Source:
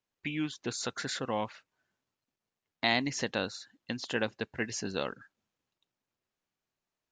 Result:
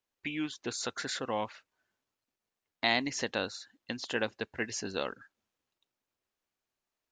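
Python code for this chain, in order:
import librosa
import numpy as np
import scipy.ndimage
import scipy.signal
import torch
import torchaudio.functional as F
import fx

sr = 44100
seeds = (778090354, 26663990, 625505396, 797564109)

y = fx.peak_eq(x, sr, hz=150.0, db=-7.0, octaves=1.0)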